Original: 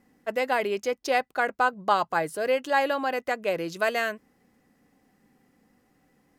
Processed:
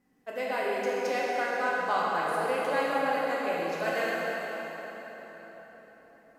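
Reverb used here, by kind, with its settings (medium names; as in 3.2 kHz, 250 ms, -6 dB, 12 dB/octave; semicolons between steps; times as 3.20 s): plate-style reverb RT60 4.8 s, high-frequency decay 0.7×, DRR -6.5 dB; trim -10 dB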